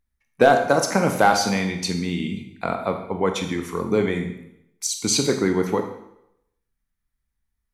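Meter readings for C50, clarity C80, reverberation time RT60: 7.5 dB, 10.0 dB, 0.80 s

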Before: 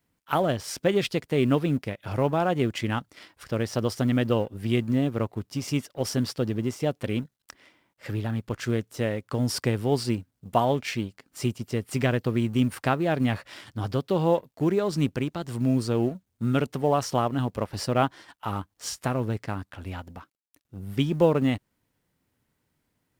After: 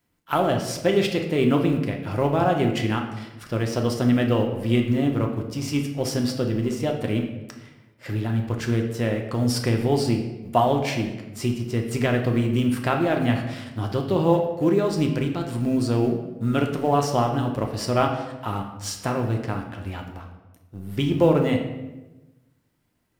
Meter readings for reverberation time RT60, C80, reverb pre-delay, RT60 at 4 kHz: 1.1 s, 9.0 dB, 3 ms, 0.75 s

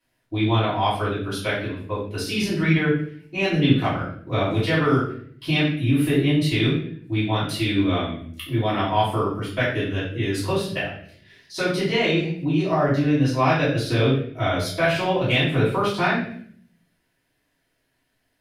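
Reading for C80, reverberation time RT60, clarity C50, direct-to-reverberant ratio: 8.0 dB, 0.55 s, 3.5 dB, -11.0 dB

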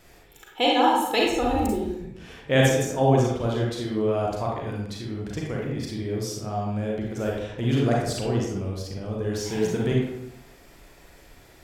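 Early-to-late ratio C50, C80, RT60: 0.0 dB, 4.0 dB, 0.80 s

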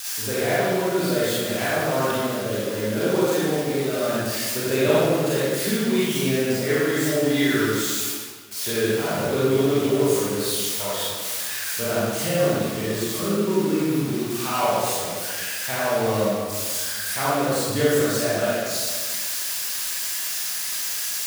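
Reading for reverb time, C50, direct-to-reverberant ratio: 1.7 s, -4.5 dB, -9.5 dB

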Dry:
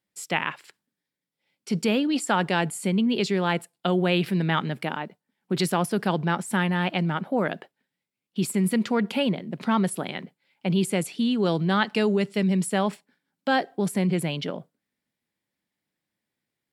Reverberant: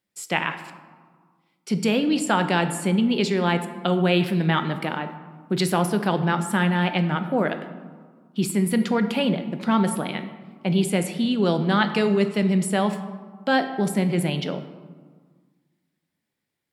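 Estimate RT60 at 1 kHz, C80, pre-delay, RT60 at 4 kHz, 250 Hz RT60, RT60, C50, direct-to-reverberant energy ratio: 1.7 s, 12.0 dB, 5 ms, 0.80 s, 2.0 s, 1.7 s, 10.5 dB, 8.0 dB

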